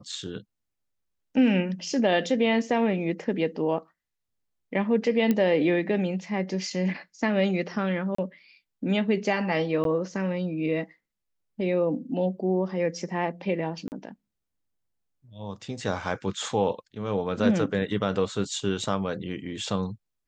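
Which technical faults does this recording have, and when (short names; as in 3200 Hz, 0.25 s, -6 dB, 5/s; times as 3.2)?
5.31 pop -12 dBFS
8.15–8.18 gap 34 ms
9.84–9.85 gap 12 ms
13.88–13.92 gap 39 ms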